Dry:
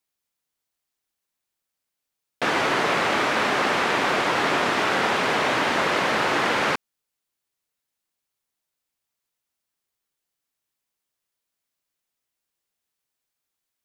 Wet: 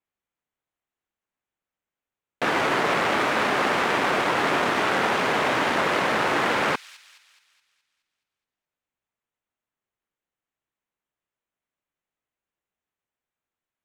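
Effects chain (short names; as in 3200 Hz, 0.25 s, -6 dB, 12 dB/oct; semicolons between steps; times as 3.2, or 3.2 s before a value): Wiener smoothing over 9 samples; thin delay 0.211 s, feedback 49%, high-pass 4200 Hz, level -9.5 dB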